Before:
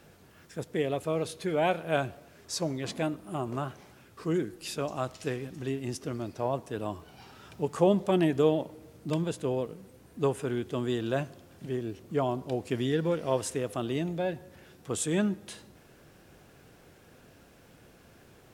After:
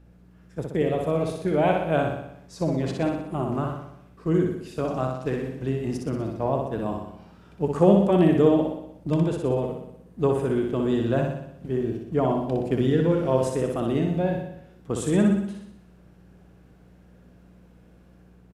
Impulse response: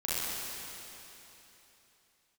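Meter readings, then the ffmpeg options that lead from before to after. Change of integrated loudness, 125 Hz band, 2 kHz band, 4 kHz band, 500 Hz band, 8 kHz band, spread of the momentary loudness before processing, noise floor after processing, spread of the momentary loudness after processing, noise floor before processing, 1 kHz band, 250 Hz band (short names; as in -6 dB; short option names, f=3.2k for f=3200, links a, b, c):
+6.5 dB, +8.0 dB, +2.0 dB, -2.0 dB, +6.0 dB, n/a, 15 LU, -53 dBFS, 13 LU, -57 dBFS, +5.0 dB, +8.0 dB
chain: -af "equalizer=f=190:w=1.5:g=3,dynaudnorm=f=120:g=7:m=3dB,aeval=exprs='val(0)+0.00562*(sin(2*PI*60*n/s)+sin(2*PI*2*60*n/s)/2+sin(2*PI*3*60*n/s)/3+sin(2*PI*4*60*n/s)/4+sin(2*PI*5*60*n/s)/5)':c=same,aresample=32000,aresample=44100,highshelf=f=2.1k:g=-10,agate=range=-8dB:threshold=-35dB:ratio=16:detection=peak,aecho=1:1:61|122|183|244|305|366|427|488:0.631|0.366|0.212|0.123|0.0714|0.0414|0.024|0.0139,volume=1.5dB"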